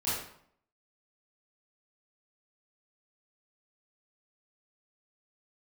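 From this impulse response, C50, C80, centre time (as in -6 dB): 0.0 dB, 4.5 dB, 65 ms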